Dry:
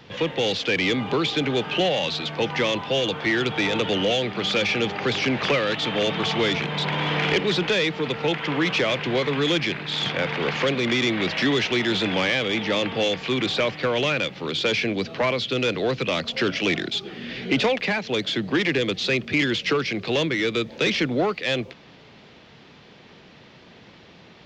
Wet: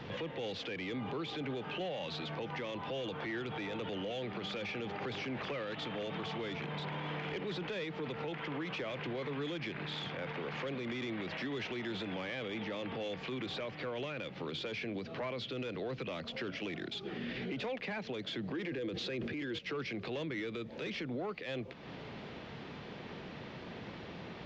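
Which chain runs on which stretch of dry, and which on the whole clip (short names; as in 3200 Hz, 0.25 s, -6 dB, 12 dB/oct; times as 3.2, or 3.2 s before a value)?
18.54–19.59 small resonant body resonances 330/480/1600 Hz, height 8 dB + fast leveller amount 70%
whole clip: compressor 3:1, threshold -40 dBFS; high shelf 3500 Hz -12 dB; limiter -35 dBFS; gain +3.5 dB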